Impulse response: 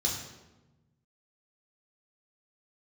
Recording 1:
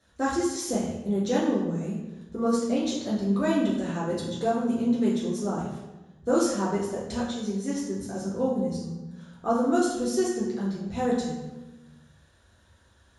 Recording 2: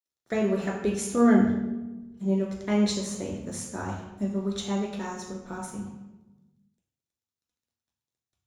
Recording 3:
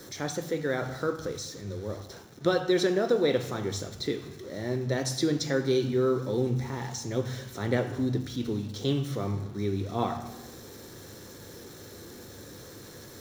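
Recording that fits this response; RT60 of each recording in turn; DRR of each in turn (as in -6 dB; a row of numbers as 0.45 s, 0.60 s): 2; 1.1 s, 1.1 s, 1.1 s; -7.5 dB, -2.5 dB, 5.5 dB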